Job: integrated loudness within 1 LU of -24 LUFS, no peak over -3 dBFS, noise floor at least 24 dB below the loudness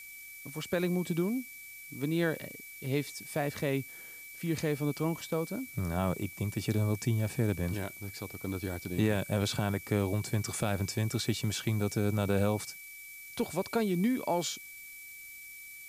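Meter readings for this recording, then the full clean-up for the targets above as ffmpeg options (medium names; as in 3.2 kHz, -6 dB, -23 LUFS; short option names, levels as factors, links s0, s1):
steady tone 2.3 kHz; tone level -47 dBFS; noise floor -48 dBFS; noise floor target -57 dBFS; loudness -32.5 LUFS; peak level -16.5 dBFS; loudness target -24.0 LUFS
-> -af "bandreject=f=2300:w=30"
-af "afftdn=nr=9:nf=-48"
-af "volume=2.66"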